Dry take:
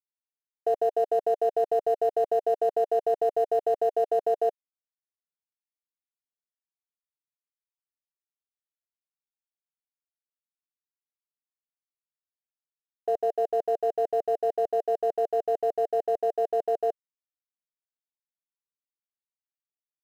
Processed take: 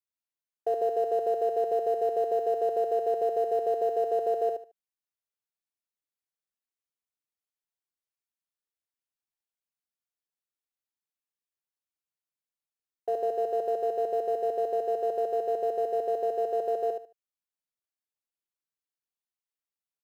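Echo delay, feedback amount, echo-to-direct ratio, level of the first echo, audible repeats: 74 ms, 22%, −6.0 dB, −6.0 dB, 3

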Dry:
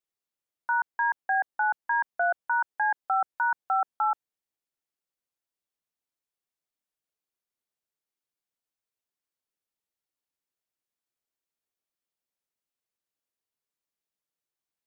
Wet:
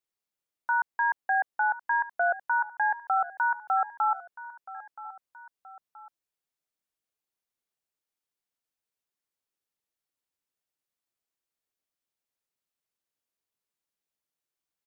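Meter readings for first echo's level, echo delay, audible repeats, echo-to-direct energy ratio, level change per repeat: −16.5 dB, 975 ms, 2, −15.5 dB, −6.5 dB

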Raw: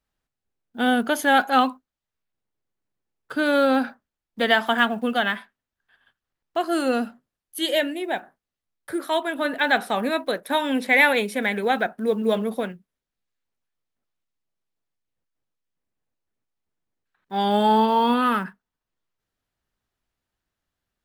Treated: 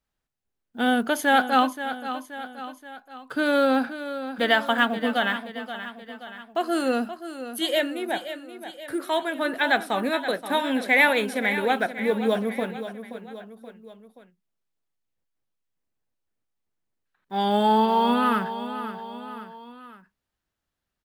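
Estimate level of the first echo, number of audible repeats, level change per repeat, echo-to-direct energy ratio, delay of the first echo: −11.5 dB, 3, −5.5 dB, −10.0 dB, 527 ms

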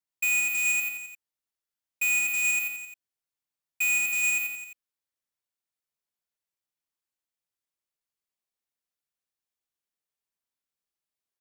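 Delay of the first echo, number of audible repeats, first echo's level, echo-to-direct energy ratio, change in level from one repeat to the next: 87 ms, 4, −5.5 dB, −4.0 dB, −5.0 dB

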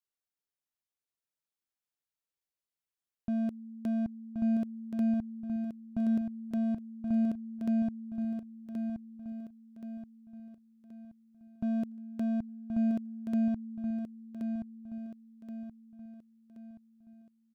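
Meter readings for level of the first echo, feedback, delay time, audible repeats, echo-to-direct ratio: −6.0 dB, 43%, 1,076 ms, 4, −5.0 dB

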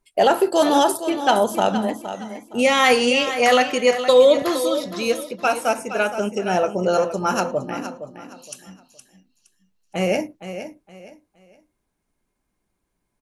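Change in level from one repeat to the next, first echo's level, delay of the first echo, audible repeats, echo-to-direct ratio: −11.0 dB, −11.0 dB, 466 ms, 3, −10.5 dB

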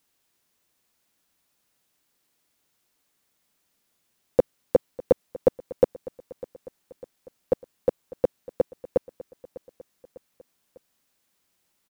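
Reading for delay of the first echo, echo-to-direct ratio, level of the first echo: 600 ms, −17.5 dB, −19.0 dB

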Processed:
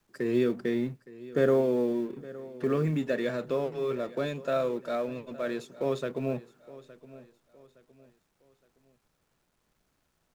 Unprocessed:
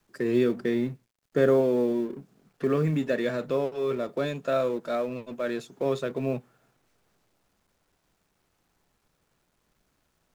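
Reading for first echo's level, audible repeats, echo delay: −18.5 dB, 2, 865 ms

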